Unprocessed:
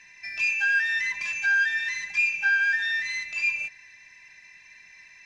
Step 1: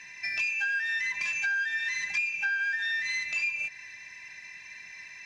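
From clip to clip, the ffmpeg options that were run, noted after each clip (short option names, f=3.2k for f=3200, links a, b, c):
-af "highpass=56,acompressor=threshold=-33dB:ratio=6,volume=5dB"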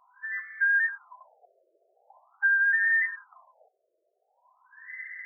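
-af "acrusher=bits=5:mode=log:mix=0:aa=0.000001,crystalizer=i=9.5:c=0,afftfilt=real='re*between(b*sr/1024,480*pow(1600/480,0.5+0.5*sin(2*PI*0.44*pts/sr))/1.41,480*pow(1600/480,0.5+0.5*sin(2*PI*0.44*pts/sr))*1.41)':imag='im*between(b*sr/1024,480*pow(1600/480,0.5+0.5*sin(2*PI*0.44*pts/sr))/1.41,480*pow(1600/480,0.5+0.5*sin(2*PI*0.44*pts/sr))*1.41)':win_size=1024:overlap=0.75,volume=-1.5dB"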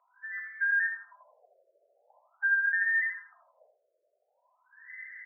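-af "highpass=f=490:w=0.5412,highpass=f=490:w=1.3066,equalizer=f=560:t=q:w=4:g=4,equalizer=f=790:t=q:w=4:g=-9,equalizer=f=1.1k:t=q:w=4:g=-10,equalizer=f=1.7k:t=q:w=4:g=-3,lowpass=f=2k:w=0.5412,lowpass=f=2k:w=1.3066,aecho=1:1:81|162|243:0.473|0.0946|0.0189"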